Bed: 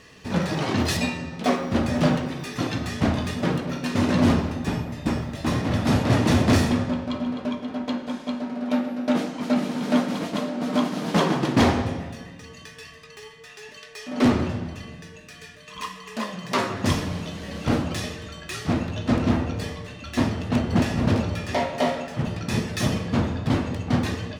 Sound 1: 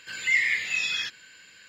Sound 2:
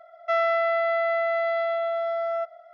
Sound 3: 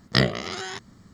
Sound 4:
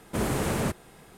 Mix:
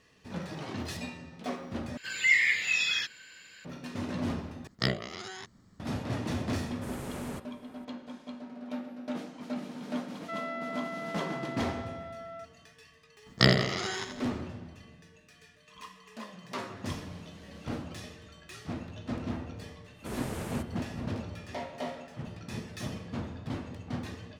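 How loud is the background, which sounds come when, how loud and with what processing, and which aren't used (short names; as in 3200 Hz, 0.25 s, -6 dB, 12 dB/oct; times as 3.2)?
bed -14 dB
1.97 replace with 1 -0.5 dB
4.67 replace with 3 -9 dB
6.68 add 4 -12.5 dB
10 add 2 -12.5 dB + HPF 800 Hz
13.26 add 3 -2 dB + feedback echo 83 ms, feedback 47%, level -7 dB
19.91 add 4 -10.5 dB, fades 0.10 s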